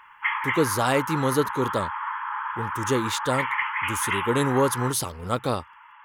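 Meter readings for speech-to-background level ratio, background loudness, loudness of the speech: 2.5 dB, -28.5 LUFS, -26.0 LUFS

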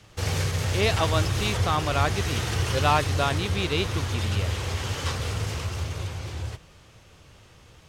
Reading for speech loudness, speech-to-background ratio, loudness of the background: -28.0 LUFS, 0.0 dB, -28.0 LUFS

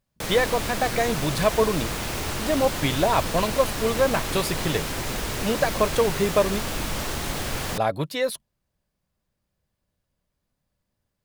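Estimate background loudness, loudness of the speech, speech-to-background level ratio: -28.5 LUFS, -25.0 LUFS, 3.5 dB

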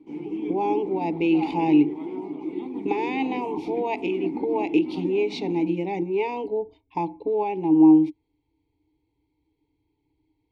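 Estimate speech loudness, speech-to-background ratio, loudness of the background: -24.0 LUFS, 8.5 dB, -32.5 LUFS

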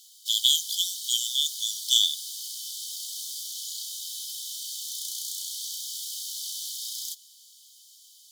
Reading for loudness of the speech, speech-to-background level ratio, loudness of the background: -23.5 LUFS, 9.5 dB, -33.0 LUFS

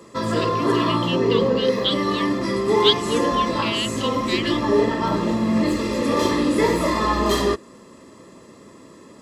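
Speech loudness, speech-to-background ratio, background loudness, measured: -27.0 LUFS, -6.0 dB, -21.0 LUFS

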